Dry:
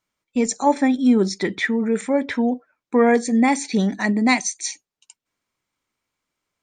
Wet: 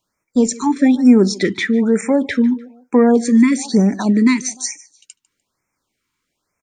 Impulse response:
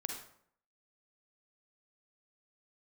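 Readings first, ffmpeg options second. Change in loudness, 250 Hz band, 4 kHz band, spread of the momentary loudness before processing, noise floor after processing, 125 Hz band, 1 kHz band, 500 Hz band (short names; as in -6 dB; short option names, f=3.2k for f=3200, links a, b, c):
+5.0 dB, +6.5 dB, +2.5 dB, 9 LU, -76 dBFS, n/a, -3.0 dB, +3.5 dB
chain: -filter_complex "[0:a]aecho=1:1:149|298:0.0794|0.0222,acrossover=split=420[a][b];[b]acompressor=threshold=-25dB:ratio=6[c];[a][c]amix=inputs=2:normalize=0,afftfilt=real='re*(1-between(b*sr/1024,590*pow(3800/590,0.5+0.5*sin(2*PI*1.1*pts/sr))/1.41,590*pow(3800/590,0.5+0.5*sin(2*PI*1.1*pts/sr))*1.41))':imag='im*(1-between(b*sr/1024,590*pow(3800/590,0.5+0.5*sin(2*PI*1.1*pts/sr))/1.41,590*pow(3800/590,0.5+0.5*sin(2*PI*1.1*pts/sr))*1.41))':win_size=1024:overlap=0.75,volume=6.5dB"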